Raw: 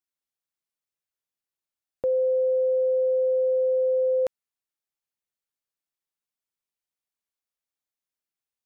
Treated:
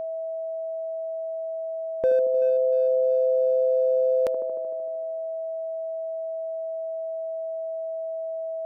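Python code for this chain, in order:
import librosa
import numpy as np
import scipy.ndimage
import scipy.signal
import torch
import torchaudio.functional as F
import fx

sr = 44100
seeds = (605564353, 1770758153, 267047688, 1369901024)

p1 = fx.echo_wet_bandpass(x, sr, ms=76, feedback_pct=76, hz=410.0, wet_db=-7.0)
p2 = np.clip(10.0 ** (22.5 / 20.0) * p1, -1.0, 1.0) / 10.0 ** (22.5 / 20.0)
p3 = p1 + (p2 * 10.0 ** (-5.5 / 20.0))
y = p3 + 10.0 ** (-28.0 / 20.0) * np.sin(2.0 * np.pi * 650.0 * np.arange(len(p3)) / sr)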